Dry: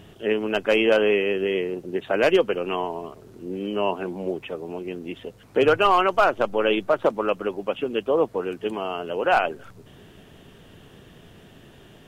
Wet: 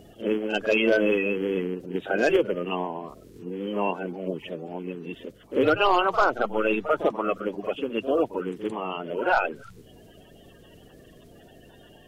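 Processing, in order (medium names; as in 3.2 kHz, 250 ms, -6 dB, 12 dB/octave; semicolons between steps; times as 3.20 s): coarse spectral quantiser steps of 30 dB; reverse echo 44 ms -12 dB; trim -2 dB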